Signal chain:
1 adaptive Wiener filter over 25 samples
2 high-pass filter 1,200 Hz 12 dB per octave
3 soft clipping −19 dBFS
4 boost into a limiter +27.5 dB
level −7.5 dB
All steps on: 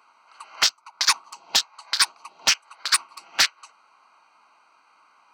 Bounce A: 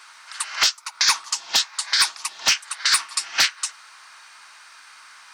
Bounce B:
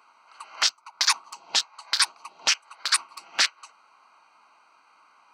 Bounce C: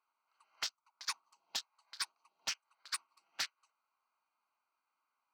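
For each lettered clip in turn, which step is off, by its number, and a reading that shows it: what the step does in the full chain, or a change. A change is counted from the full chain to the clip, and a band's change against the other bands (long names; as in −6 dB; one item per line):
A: 1, 500 Hz band −2.0 dB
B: 3, distortion level −13 dB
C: 4, change in crest factor +1.5 dB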